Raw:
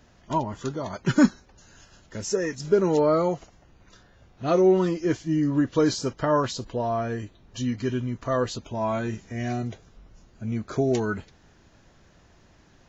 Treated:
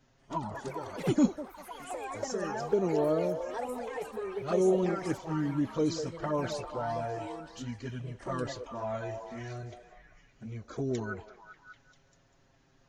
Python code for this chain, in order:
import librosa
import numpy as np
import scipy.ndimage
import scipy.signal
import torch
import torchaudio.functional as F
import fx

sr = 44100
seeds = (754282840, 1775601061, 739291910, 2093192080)

y = fx.echo_pitch(x, sr, ms=187, semitones=5, count=3, db_per_echo=-6.0)
y = fx.env_flanger(y, sr, rest_ms=7.8, full_db=-16.5)
y = fx.echo_stepped(y, sr, ms=197, hz=600.0, octaves=0.7, feedback_pct=70, wet_db=-4.5)
y = F.gain(torch.from_numpy(y), -6.5).numpy()